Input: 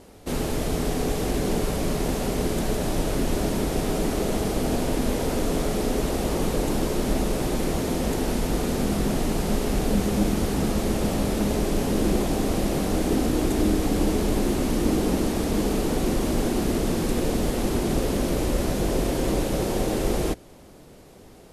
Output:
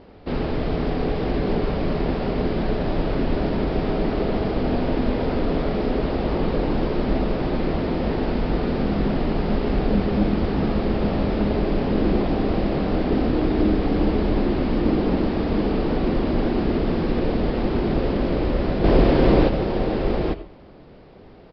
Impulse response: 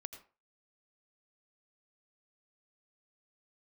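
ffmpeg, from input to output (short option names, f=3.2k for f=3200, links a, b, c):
-filter_complex "[0:a]asettb=1/sr,asplit=3[a][b][c];[a]atrim=end=18.844[d];[b]atrim=start=18.84:end=19.49,asetpts=PTS-STARTPTS,afade=t=in:d=0.004:c=qsin,afade=t=out:st=0.646:d=0.004:c=qsin,acontrast=62[e];[c]atrim=start=19.486[f];[d][e]acrossfade=d=0.004:c1=hsin:c2=qsin[g];[g][f]acrossfade=d=0.004:c1=qsin:c2=hsin,aresample=11025,aresample=44100,asplit=2[h][i];[1:a]atrim=start_sample=2205,lowpass=3.1k[j];[i][j]afir=irnorm=-1:irlink=0,volume=3dB[k];[h][k]amix=inputs=2:normalize=0,volume=-3dB"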